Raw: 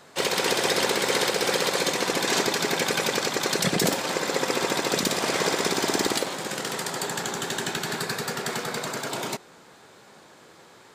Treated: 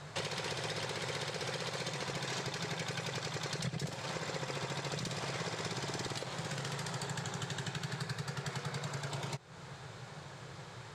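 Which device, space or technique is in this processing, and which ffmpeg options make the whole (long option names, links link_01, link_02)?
jukebox: -af "lowpass=7400,lowshelf=frequency=180:width_type=q:width=3:gain=9.5,acompressor=threshold=-38dB:ratio=6,volume=1dB"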